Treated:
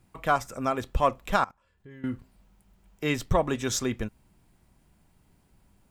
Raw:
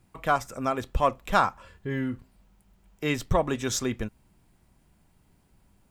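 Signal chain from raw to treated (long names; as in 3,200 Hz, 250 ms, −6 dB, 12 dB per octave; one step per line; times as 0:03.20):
0:01.36–0:02.04: output level in coarse steps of 23 dB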